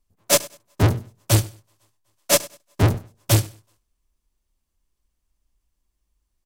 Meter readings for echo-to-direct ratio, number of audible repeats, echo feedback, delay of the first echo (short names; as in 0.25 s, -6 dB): -20.5 dB, 2, 25%, 99 ms